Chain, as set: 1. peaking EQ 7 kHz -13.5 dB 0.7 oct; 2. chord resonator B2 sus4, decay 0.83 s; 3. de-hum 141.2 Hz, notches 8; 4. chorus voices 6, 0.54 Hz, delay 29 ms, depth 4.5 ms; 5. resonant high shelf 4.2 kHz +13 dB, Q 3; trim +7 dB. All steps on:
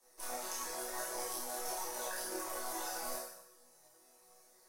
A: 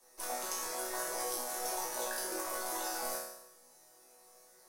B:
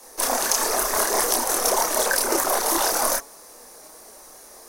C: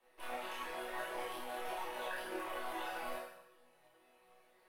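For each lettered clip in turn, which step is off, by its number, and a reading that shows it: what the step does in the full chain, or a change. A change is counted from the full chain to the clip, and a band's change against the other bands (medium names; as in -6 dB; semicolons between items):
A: 4, crest factor change +2.0 dB; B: 2, crest factor change +5.5 dB; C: 5, 8 kHz band -17.0 dB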